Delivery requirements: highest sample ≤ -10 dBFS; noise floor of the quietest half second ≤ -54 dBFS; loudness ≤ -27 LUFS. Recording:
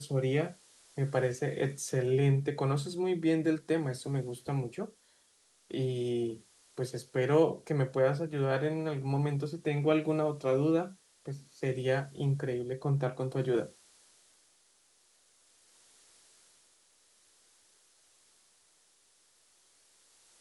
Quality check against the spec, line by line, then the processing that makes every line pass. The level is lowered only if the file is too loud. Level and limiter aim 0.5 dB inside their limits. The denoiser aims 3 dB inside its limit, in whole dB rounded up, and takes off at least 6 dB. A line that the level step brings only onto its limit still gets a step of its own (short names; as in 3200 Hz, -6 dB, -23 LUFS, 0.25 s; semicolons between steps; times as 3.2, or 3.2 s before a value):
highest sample -14.5 dBFS: OK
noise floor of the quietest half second -67 dBFS: OK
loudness -31.5 LUFS: OK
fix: none